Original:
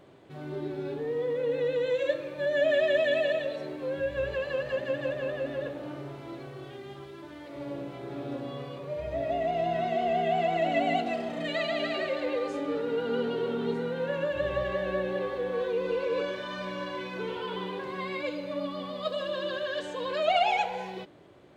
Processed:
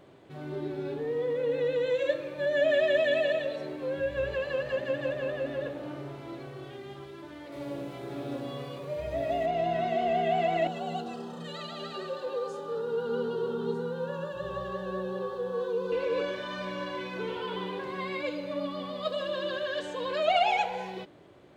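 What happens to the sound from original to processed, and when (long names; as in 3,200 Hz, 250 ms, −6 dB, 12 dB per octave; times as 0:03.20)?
0:07.52–0:09.46: high-shelf EQ 5,600 Hz +9.5 dB
0:10.67–0:15.92: phaser with its sweep stopped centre 430 Hz, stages 8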